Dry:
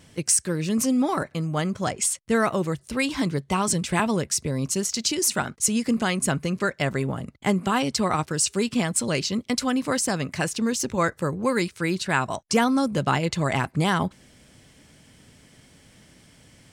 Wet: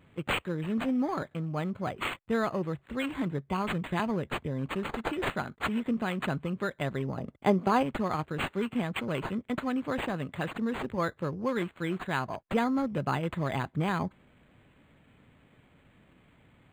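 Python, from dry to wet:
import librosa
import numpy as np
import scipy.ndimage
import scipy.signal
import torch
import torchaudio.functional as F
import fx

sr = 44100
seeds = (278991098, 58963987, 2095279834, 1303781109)

y = fx.peak_eq(x, sr, hz=580.0, db=8.5, octaves=2.3, at=(7.17, 7.83))
y = np.interp(np.arange(len(y)), np.arange(len(y))[::8], y[::8])
y = F.gain(torch.from_numpy(y), -6.5).numpy()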